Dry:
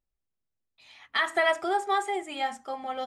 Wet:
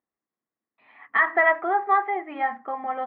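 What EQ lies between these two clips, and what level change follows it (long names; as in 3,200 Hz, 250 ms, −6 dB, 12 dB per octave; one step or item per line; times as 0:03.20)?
dynamic equaliser 310 Hz, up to −6 dB, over −42 dBFS, Q 0.95
loudspeaker in its box 180–2,100 Hz, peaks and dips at 220 Hz +8 dB, 310 Hz +9 dB, 460 Hz +5 dB, 730 Hz +6 dB, 1,100 Hz +10 dB, 1,900 Hz +9 dB
0.0 dB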